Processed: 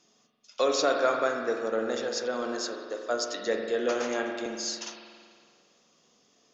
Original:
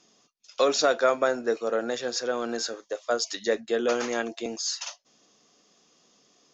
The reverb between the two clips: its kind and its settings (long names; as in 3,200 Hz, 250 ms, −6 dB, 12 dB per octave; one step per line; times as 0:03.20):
spring reverb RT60 2 s, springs 45 ms, chirp 45 ms, DRR 2.5 dB
level −3.5 dB